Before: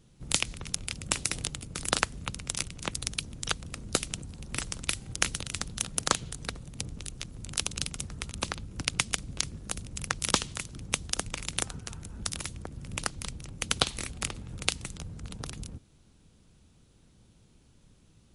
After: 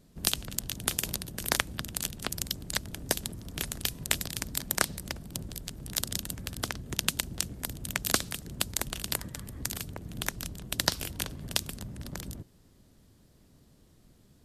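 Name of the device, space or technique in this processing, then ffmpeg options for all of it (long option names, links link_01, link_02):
nightcore: -af "asetrate=56007,aresample=44100"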